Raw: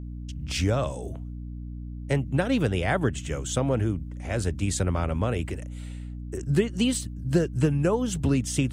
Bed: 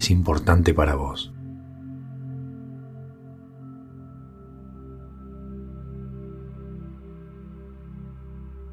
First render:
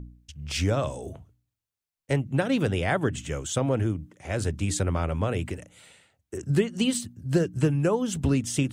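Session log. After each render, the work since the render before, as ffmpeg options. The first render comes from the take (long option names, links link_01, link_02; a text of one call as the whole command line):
ffmpeg -i in.wav -af "bandreject=frequency=60:width_type=h:width=4,bandreject=frequency=120:width_type=h:width=4,bandreject=frequency=180:width_type=h:width=4,bandreject=frequency=240:width_type=h:width=4,bandreject=frequency=300:width_type=h:width=4" out.wav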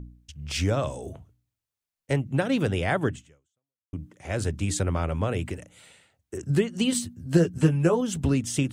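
ffmpeg -i in.wav -filter_complex "[0:a]asettb=1/sr,asplit=3[link_01][link_02][link_03];[link_01]atrim=end=6.914[link_04];[link_02]atrim=start=6.91:end=8.01,asetpts=PTS-STARTPTS,afade=type=in:duration=0.004:curve=qsin,afade=type=out:start_time=1.096:duration=0.004:curve=qsin,asplit=2[link_05][link_06];[link_06]adelay=12,volume=-2.5dB[link_07];[link_05][link_07]amix=inputs=2:normalize=0,atrim=end_sample=48510[link_08];[link_03]atrim=start=8.006[link_09];[link_04][link_08]acrossfade=duration=0.004:curve1=hsin:curve2=qsin[link_10];[link_10][link_09]acrossfade=duration=0.004:curve1=qsin:curve2=hsin,asplit=2[link_11][link_12];[link_11]atrim=end=3.93,asetpts=PTS-STARTPTS,afade=type=out:start_time=3.1:duration=0.83:curve=exp[link_13];[link_12]atrim=start=3.93,asetpts=PTS-STARTPTS,afade=type=in:duration=0.004:curve=hsin[link_14];[link_13][link_14]concat=n=2:v=0:a=1" out.wav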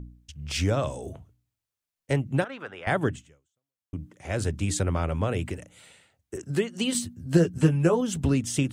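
ffmpeg -i in.wav -filter_complex "[0:a]asettb=1/sr,asplit=3[link_01][link_02][link_03];[link_01]atrim=end=2.444[link_04];[link_02]atrim=start=2.44:end=2.87,asetpts=PTS-STARTPTS,afade=type=in:duration=0.004:curve=qsin,afade=type=out:start_time=0.426:duration=0.004:curve=qsin,bandpass=frequency=1300:width_type=q:width=1.8[link_05];[link_03]atrim=start=2.866[link_06];[link_04][link_05]acrossfade=duration=0.004:curve1=hsin:curve2=qsin[link_07];[link_07][link_06]acrossfade=duration=0.004:curve1=qsin:curve2=hsin,asettb=1/sr,asplit=3[link_08][link_09][link_10];[link_08]atrim=end=6.364[link_11];[link_09]atrim=start=6.36:end=6.95,asetpts=PTS-STARTPTS,afade=type=in:duration=0.004:curve=qsin,afade=type=out:start_time=0.586:duration=0.004:curve=qsin,highpass=frequency=280:poles=1[link_12];[link_10]atrim=start=6.946[link_13];[link_11][link_12]acrossfade=duration=0.004:curve1=hsin:curve2=qsin[link_14];[link_14][link_13]acrossfade=duration=0.004:curve1=qsin:curve2=hsin" out.wav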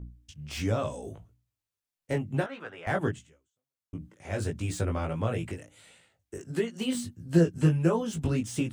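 ffmpeg -i in.wav -filter_complex "[0:a]acrossover=split=1900[link_01][link_02];[link_02]asoftclip=type=tanh:threshold=-33dB[link_03];[link_01][link_03]amix=inputs=2:normalize=0,flanger=delay=17.5:depth=2.5:speed=1.5" out.wav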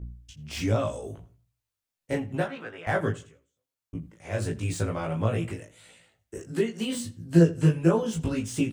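ffmpeg -i in.wav -filter_complex "[0:a]asplit=2[link_01][link_02];[link_02]adelay=18,volume=-2.5dB[link_03];[link_01][link_03]amix=inputs=2:normalize=0,asplit=2[link_04][link_05];[link_05]adelay=84,lowpass=frequency=4600:poles=1,volume=-18.5dB,asplit=2[link_06][link_07];[link_07]adelay=84,lowpass=frequency=4600:poles=1,volume=0.31,asplit=2[link_08][link_09];[link_09]adelay=84,lowpass=frequency=4600:poles=1,volume=0.31[link_10];[link_04][link_06][link_08][link_10]amix=inputs=4:normalize=0" out.wav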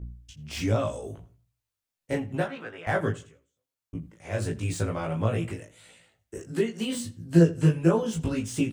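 ffmpeg -i in.wav -af anull out.wav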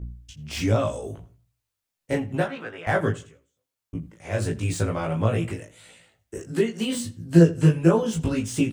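ffmpeg -i in.wav -af "volume=3.5dB" out.wav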